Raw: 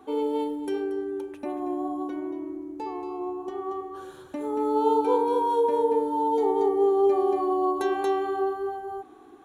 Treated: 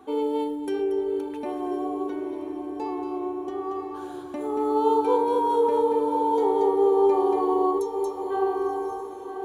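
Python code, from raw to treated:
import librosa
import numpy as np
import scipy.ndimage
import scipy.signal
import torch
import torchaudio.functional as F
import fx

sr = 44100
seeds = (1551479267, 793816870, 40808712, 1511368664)

y = fx.comb(x, sr, ms=2.2, depth=0.7, at=(0.79, 1.19))
y = fx.cheby2_bandstop(y, sr, low_hz=330.0, high_hz=1900.0, order=4, stop_db=60, at=(7.78, 8.3), fade=0.02)
y = fx.echo_diffused(y, sr, ms=997, feedback_pct=47, wet_db=-8.5)
y = y * 10.0 ** (1.0 / 20.0)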